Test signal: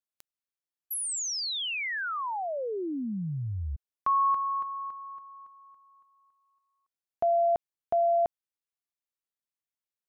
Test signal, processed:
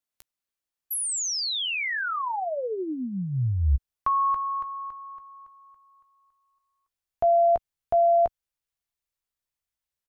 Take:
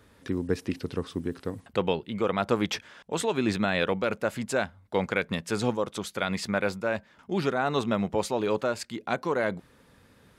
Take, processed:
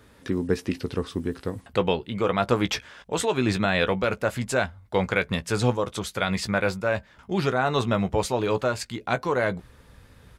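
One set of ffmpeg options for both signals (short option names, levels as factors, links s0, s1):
-filter_complex "[0:a]asubboost=boost=4.5:cutoff=98,asplit=2[s0][s1];[s1]adelay=16,volume=0.282[s2];[s0][s2]amix=inputs=2:normalize=0,volume=1.5"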